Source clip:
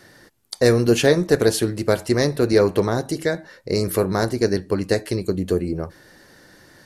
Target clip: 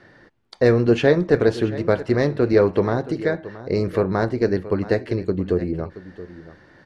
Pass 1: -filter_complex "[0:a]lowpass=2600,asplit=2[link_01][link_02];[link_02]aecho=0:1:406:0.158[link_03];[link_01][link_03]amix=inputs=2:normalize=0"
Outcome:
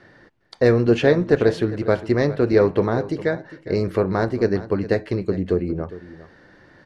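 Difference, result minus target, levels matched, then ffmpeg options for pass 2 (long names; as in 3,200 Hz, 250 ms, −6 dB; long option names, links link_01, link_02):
echo 269 ms early
-filter_complex "[0:a]lowpass=2600,asplit=2[link_01][link_02];[link_02]aecho=0:1:675:0.158[link_03];[link_01][link_03]amix=inputs=2:normalize=0"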